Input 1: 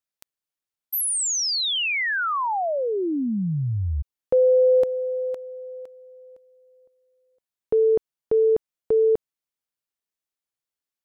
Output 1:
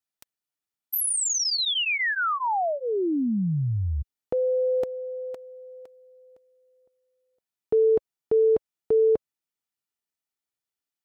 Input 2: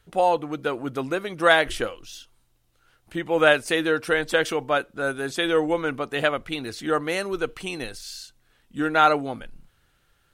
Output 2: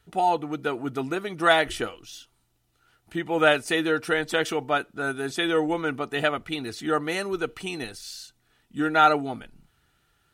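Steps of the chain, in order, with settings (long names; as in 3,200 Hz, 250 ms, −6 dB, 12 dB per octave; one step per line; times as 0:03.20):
notch comb filter 540 Hz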